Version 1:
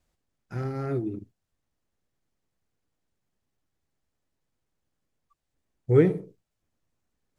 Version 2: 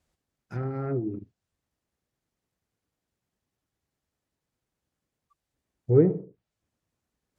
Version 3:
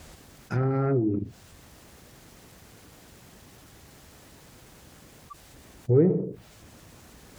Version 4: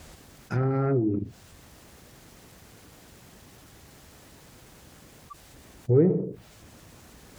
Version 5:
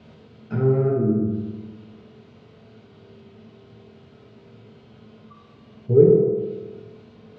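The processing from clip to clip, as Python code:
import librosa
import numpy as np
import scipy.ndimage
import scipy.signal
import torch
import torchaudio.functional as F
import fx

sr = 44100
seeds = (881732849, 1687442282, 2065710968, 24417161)

y1 = fx.env_lowpass_down(x, sr, base_hz=820.0, full_db=-25.0)
y1 = scipy.signal.sosfilt(scipy.signal.butter(2, 43.0, 'highpass', fs=sr, output='sos'), y1)
y2 = fx.env_flatten(y1, sr, amount_pct=50)
y2 = y2 * librosa.db_to_amplitude(-2.0)
y3 = y2
y4 = fx.cabinet(y3, sr, low_hz=100.0, low_slope=12, high_hz=3700.0, hz=(110.0, 220.0, 440.0, 1100.0, 1800.0), db=(8, 10, 6, -3, -7))
y4 = fx.room_flutter(y4, sr, wall_m=10.5, rt60_s=0.3)
y4 = fx.rev_fdn(y4, sr, rt60_s=1.4, lf_ratio=1.05, hf_ratio=0.8, size_ms=14.0, drr_db=-2.0)
y4 = y4 * librosa.db_to_amplitude(-4.0)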